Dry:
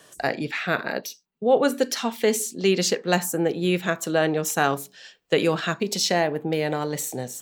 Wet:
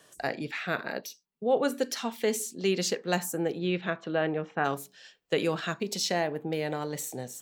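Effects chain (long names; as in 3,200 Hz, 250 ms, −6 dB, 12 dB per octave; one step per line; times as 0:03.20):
0:03.58–0:04.64: low-pass filter 5,100 Hz → 2,300 Hz 24 dB per octave
level −6.5 dB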